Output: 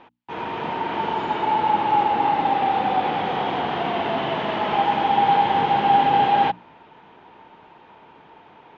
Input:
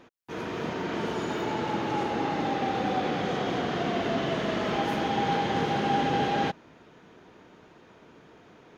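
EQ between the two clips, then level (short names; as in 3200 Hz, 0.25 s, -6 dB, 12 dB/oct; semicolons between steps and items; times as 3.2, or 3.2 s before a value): synth low-pass 3000 Hz, resonance Q 1.9; bell 880 Hz +15 dB 0.47 oct; notches 60/120/180/240/300 Hz; 0.0 dB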